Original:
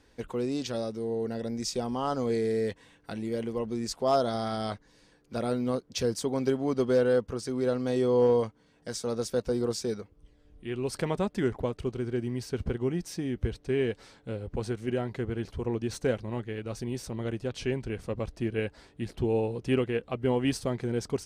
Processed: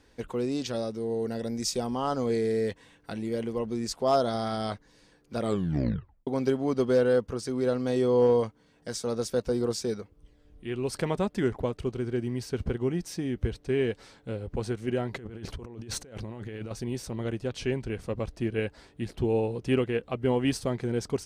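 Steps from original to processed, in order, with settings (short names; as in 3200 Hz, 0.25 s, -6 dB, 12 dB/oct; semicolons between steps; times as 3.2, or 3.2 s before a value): 1.09–1.87 high shelf 5500 Hz -> 9000 Hz +7.5 dB; 5.4 tape stop 0.87 s; 15.13–16.71 negative-ratio compressor -41 dBFS, ratio -1; gain +1 dB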